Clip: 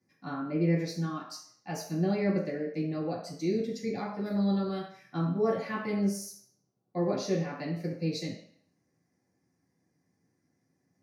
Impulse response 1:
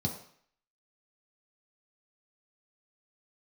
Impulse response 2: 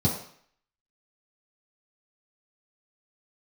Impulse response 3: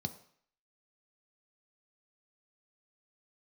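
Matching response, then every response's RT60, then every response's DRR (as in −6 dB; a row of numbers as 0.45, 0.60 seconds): 2; 0.60, 0.60, 0.60 seconds; −1.0, −8.5, 7.5 decibels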